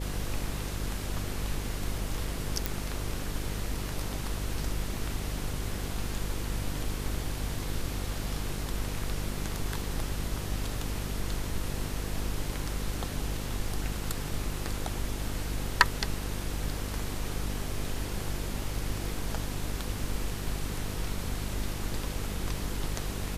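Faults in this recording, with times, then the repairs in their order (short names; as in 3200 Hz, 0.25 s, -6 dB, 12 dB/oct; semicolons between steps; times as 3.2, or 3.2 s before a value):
buzz 50 Hz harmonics 10 -36 dBFS
2.66 pop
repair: de-click; de-hum 50 Hz, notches 10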